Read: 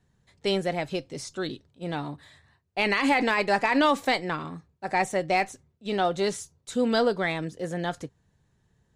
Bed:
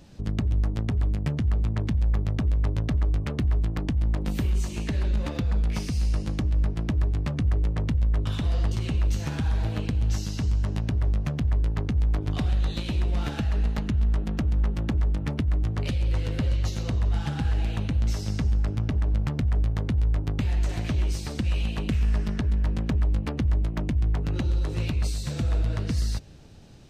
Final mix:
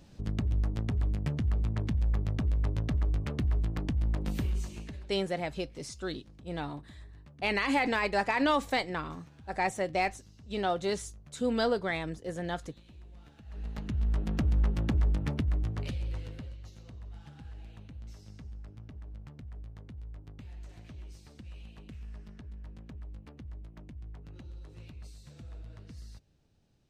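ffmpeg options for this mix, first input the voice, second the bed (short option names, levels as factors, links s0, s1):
-filter_complex "[0:a]adelay=4650,volume=0.562[s0];[1:a]volume=8.41,afade=t=out:st=4.37:d=0.73:silence=0.0891251,afade=t=in:st=13.44:d=0.95:silence=0.0668344,afade=t=out:st=15.12:d=1.43:silence=0.11885[s1];[s0][s1]amix=inputs=2:normalize=0"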